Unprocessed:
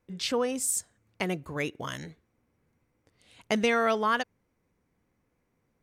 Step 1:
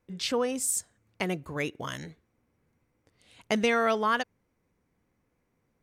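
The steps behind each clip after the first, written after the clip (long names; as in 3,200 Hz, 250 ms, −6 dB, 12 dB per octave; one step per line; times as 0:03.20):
no processing that can be heard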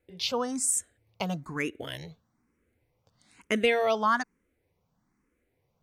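frequency shifter mixed with the dry sound +1.1 Hz
level +2.5 dB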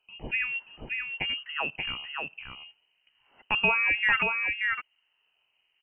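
single-tap delay 580 ms −4 dB
voice inversion scrambler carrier 3,000 Hz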